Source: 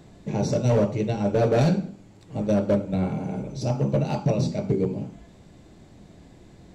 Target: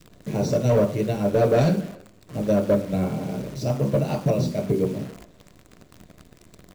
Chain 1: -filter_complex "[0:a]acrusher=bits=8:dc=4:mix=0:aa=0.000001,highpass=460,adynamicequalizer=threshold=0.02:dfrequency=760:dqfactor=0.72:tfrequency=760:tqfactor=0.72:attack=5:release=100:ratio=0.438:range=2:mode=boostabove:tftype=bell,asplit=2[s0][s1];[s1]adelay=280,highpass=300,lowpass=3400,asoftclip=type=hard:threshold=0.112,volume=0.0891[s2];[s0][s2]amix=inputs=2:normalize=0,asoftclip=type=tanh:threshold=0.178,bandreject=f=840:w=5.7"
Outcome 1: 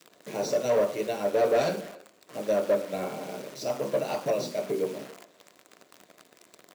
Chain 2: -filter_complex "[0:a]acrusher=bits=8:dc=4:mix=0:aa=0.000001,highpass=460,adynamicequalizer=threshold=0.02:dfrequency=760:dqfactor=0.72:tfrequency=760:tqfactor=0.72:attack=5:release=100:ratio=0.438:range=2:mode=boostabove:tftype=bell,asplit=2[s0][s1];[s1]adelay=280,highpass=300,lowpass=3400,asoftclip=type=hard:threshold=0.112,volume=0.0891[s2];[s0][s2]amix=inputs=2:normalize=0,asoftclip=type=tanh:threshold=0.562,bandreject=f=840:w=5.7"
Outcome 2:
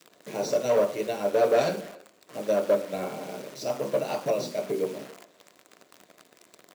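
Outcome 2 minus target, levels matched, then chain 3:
500 Hz band +2.5 dB
-filter_complex "[0:a]acrusher=bits=8:dc=4:mix=0:aa=0.000001,adynamicequalizer=threshold=0.02:dfrequency=760:dqfactor=0.72:tfrequency=760:tqfactor=0.72:attack=5:release=100:ratio=0.438:range=2:mode=boostabove:tftype=bell,asplit=2[s0][s1];[s1]adelay=280,highpass=300,lowpass=3400,asoftclip=type=hard:threshold=0.112,volume=0.0891[s2];[s0][s2]amix=inputs=2:normalize=0,asoftclip=type=tanh:threshold=0.562,bandreject=f=840:w=5.7"

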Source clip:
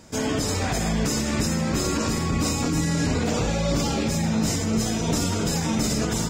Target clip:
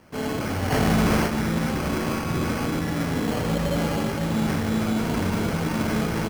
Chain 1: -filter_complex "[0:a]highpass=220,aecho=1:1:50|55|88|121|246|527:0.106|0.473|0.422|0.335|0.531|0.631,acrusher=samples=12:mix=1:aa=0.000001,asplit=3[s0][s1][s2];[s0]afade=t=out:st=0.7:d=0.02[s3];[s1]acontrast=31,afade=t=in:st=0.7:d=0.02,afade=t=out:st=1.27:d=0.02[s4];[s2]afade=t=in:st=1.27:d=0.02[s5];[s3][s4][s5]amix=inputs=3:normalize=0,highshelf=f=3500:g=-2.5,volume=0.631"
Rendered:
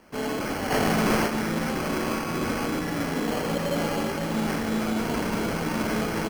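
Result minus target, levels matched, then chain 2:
125 Hz band -5.0 dB
-filter_complex "[0:a]highpass=66,aecho=1:1:50|55|88|121|246|527:0.106|0.473|0.422|0.335|0.531|0.631,acrusher=samples=12:mix=1:aa=0.000001,asplit=3[s0][s1][s2];[s0]afade=t=out:st=0.7:d=0.02[s3];[s1]acontrast=31,afade=t=in:st=0.7:d=0.02,afade=t=out:st=1.27:d=0.02[s4];[s2]afade=t=in:st=1.27:d=0.02[s5];[s3][s4][s5]amix=inputs=3:normalize=0,highshelf=f=3500:g=-2.5,volume=0.631"

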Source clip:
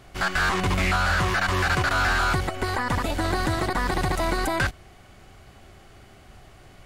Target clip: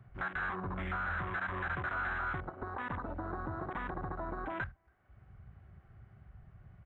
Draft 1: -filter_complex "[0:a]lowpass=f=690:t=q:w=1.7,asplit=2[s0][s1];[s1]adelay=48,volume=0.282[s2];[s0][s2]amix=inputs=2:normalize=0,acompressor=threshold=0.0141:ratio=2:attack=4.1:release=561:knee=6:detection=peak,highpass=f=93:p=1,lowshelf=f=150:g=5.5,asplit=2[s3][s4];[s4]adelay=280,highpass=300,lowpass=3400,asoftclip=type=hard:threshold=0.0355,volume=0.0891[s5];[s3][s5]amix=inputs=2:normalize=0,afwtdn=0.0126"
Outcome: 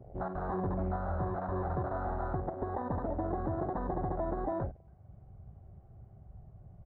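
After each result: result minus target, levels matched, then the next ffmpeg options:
2 kHz band -17.0 dB; compression: peak gain reduction -6 dB
-filter_complex "[0:a]lowpass=f=1600:t=q:w=1.7,asplit=2[s0][s1];[s1]adelay=48,volume=0.282[s2];[s0][s2]amix=inputs=2:normalize=0,acompressor=threshold=0.0141:ratio=2:attack=4.1:release=561:knee=6:detection=peak,highpass=f=93:p=1,lowshelf=f=150:g=5.5,asplit=2[s3][s4];[s4]adelay=280,highpass=300,lowpass=3400,asoftclip=type=hard:threshold=0.0355,volume=0.0891[s5];[s3][s5]amix=inputs=2:normalize=0,afwtdn=0.0126"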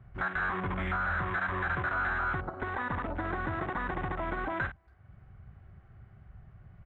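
compression: peak gain reduction -4.5 dB
-filter_complex "[0:a]lowpass=f=1600:t=q:w=1.7,asplit=2[s0][s1];[s1]adelay=48,volume=0.282[s2];[s0][s2]amix=inputs=2:normalize=0,acompressor=threshold=0.00473:ratio=2:attack=4.1:release=561:knee=6:detection=peak,highpass=f=93:p=1,lowshelf=f=150:g=5.5,asplit=2[s3][s4];[s4]adelay=280,highpass=300,lowpass=3400,asoftclip=type=hard:threshold=0.0355,volume=0.0891[s5];[s3][s5]amix=inputs=2:normalize=0,afwtdn=0.0126"

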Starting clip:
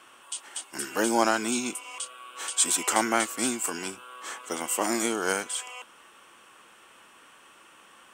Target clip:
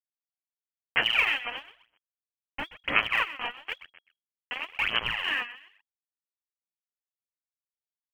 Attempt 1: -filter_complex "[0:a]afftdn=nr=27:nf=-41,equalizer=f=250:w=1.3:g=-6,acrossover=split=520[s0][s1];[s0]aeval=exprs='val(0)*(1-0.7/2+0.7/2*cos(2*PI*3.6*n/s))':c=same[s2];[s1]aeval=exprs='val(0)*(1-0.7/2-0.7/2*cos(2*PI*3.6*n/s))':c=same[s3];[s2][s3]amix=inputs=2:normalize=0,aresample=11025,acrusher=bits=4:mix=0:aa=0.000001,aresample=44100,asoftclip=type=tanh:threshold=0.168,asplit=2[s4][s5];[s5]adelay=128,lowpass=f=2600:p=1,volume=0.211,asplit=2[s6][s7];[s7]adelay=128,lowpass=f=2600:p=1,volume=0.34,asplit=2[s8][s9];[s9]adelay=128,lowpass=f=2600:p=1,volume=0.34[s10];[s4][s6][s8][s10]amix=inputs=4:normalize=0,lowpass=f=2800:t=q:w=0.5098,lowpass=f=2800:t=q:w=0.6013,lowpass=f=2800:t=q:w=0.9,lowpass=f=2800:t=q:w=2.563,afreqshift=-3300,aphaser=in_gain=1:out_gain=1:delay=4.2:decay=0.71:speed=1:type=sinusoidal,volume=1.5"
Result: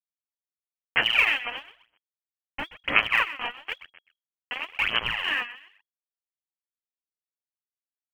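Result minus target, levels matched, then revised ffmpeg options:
saturation: distortion -8 dB
-filter_complex "[0:a]afftdn=nr=27:nf=-41,equalizer=f=250:w=1.3:g=-6,acrossover=split=520[s0][s1];[s0]aeval=exprs='val(0)*(1-0.7/2+0.7/2*cos(2*PI*3.6*n/s))':c=same[s2];[s1]aeval=exprs='val(0)*(1-0.7/2-0.7/2*cos(2*PI*3.6*n/s))':c=same[s3];[s2][s3]amix=inputs=2:normalize=0,aresample=11025,acrusher=bits=4:mix=0:aa=0.000001,aresample=44100,asoftclip=type=tanh:threshold=0.0668,asplit=2[s4][s5];[s5]adelay=128,lowpass=f=2600:p=1,volume=0.211,asplit=2[s6][s7];[s7]adelay=128,lowpass=f=2600:p=1,volume=0.34,asplit=2[s8][s9];[s9]adelay=128,lowpass=f=2600:p=1,volume=0.34[s10];[s4][s6][s8][s10]amix=inputs=4:normalize=0,lowpass=f=2800:t=q:w=0.5098,lowpass=f=2800:t=q:w=0.6013,lowpass=f=2800:t=q:w=0.9,lowpass=f=2800:t=q:w=2.563,afreqshift=-3300,aphaser=in_gain=1:out_gain=1:delay=4.2:decay=0.71:speed=1:type=sinusoidal,volume=1.5"

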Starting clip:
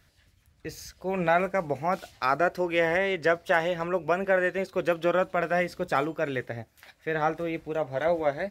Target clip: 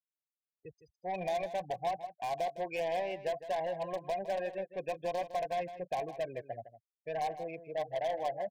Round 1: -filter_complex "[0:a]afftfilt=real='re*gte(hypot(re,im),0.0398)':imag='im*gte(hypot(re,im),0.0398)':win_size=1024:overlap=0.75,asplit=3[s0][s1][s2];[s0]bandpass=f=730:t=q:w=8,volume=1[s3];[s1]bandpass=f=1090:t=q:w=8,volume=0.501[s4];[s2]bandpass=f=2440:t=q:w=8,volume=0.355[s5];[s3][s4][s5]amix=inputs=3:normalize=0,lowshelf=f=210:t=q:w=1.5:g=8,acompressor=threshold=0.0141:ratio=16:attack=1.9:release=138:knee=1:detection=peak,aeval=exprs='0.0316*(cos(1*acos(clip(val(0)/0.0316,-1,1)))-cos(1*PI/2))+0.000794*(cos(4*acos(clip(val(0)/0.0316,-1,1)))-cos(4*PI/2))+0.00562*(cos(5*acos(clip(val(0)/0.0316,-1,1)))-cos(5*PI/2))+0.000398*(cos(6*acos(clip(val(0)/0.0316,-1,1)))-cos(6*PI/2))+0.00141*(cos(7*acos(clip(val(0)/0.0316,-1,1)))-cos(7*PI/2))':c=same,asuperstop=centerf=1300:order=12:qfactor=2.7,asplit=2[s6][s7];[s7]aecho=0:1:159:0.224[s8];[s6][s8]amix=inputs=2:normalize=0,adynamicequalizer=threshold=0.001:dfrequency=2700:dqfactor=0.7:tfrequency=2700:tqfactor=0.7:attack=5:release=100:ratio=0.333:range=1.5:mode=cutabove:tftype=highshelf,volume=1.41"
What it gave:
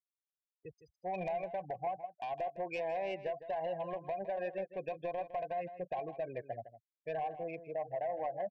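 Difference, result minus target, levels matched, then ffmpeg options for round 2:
compression: peak gain reduction +5.5 dB
-filter_complex "[0:a]afftfilt=real='re*gte(hypot(re,im),0.0398)':imag='im*gte(hypot(re,im),0.0398)':win_size=1024:overlap=0.75,asplit=3[s0][s1][s2];[s0]bandpass=f=730:t=q:w=8,volume=1[s3];[s1]bandpass=f=1090:t=q:w=8,volume=0.501[s4];[s2]bandpass=f=2440:t=q:w=8,volume=0.355[s5];[s3][s4][s5]amix=inputs=3:normalize=0,lowshelf=f=210:t=q:w=1.5:g=8,acompressor=threshold=0.0282:ratio=16:attack=1.9:release=138:knee=1:detection=peak,aeval=exprs='0.0316*(cos(1*acos(clip(val(0)/0.0316,-1,1)))-cos(1*PI/2))+0.000794*(cos(4*acos(clip(val(0)/0.0316,-1,1)))-cos(4*PI/2))+0.00562*(cos(5*acos(clip(val(0)/0.0316,-1,1)))-cos(5*PI/2))+0.000398*(cos(6*acos(clip(val(0)/0.0316,-1,1)))-cos(6*PI/2))+0.00141*(cos(7*acos(clip(val(0)/0.0316,-1,1)))-cos(7*PI/2))':c=same,asuperstop=centerf=1300:order=12:qfactor=2.7,asplit=2[s6][s7];[s7]aecho=0:1:159:0.224[s8];[s6][s8]amix=inputs=2:normalize=0,adynamicequalizer=threshold=0.001:dfrequency=2700:dqfactor=0.7:tfrequency=2700:tqfactor=0.7:attack=5:release=100:ratio=0.333:range=1.5:mode=cutabove:tftype=highshelf,volume=1.41"

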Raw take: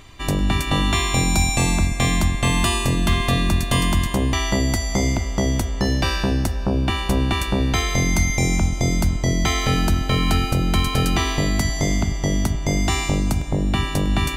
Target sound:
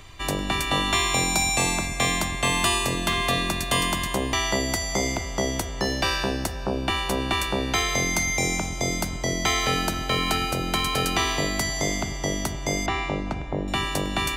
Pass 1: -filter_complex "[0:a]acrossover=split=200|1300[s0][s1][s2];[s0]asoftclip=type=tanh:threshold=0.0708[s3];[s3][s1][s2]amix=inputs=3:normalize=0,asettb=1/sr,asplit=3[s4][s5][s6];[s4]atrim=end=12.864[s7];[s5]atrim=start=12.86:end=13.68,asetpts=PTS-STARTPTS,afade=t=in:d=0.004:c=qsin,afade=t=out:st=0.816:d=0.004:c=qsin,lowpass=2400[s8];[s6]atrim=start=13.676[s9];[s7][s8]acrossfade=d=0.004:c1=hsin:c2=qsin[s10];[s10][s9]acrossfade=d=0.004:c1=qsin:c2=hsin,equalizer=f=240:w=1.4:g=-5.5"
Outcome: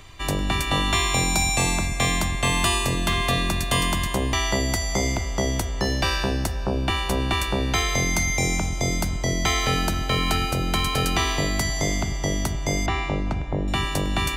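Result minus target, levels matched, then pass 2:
saturation: distortion -4 dB
-filter_complex "[0:a]acrossover=split=200|1300[s0][s1][s2];[s0]asoftclip=type=tanh:threshold=0.0266[s3];[s3][s1][s2]amix=inputs=3:normalize=0,asettb=1/sr,asplit=3[s4][s5][s6];[s4]atrim=end=12.864[s7];[s5]atrim=start=12.86:end=13.68,asetpts=PTS-STARTPTS,afade=t=in:d=0.004:c=qsin,afade=t=out:st=0.816:d=0.004:c=qsin,lowpass=2400[s8];[s6]atrim=start=13.676[s9];[s7][s8]acrossfade=d=0.004:c1=hsin:c2=qsin[s10];[s10][s9]acrossfade=d=0.004:c1=qsin:c2=hsin,equalizer=f=240:w=1.4:g=-5.5"

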